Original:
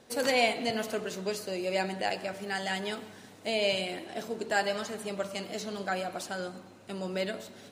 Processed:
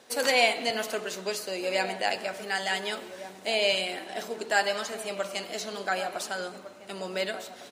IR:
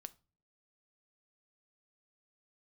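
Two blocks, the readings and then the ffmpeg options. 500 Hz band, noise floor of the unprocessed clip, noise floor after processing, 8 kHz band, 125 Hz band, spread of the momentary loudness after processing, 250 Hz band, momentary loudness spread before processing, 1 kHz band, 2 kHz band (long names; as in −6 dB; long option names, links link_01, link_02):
+1.5 dB, −52 dBFS, −48 dBFS, +5.0 dB, can't be measured, 12 LU, −3.5 dB, 11 LU, +3.0 dB, +4.5 dB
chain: -filter_complex "[0:a]highpass=frequency=600:poles=1,asplit=2[link_01][link_02];[link_02]adelay=1458,volume=-12dB,highshelf=frequency=4000:gain=-32.8[link_03];[link_01][link_03]amix=inputs=2:normalize=0,volume=5dB"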